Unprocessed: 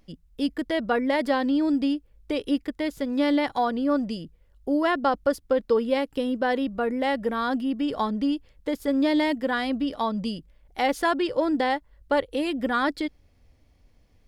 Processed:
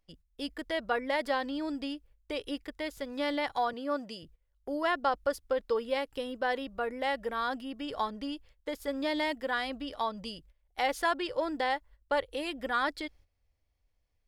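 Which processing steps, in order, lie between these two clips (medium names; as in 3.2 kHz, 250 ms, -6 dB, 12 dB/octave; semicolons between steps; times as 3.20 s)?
3.73–4.23 s: high-pass 160 Hz 12 dB/octave; gate -47 dBFS, range -12 dB; peaking EQ 220 Hz -11.5 dB 1.7 oct; trim -3.5 dB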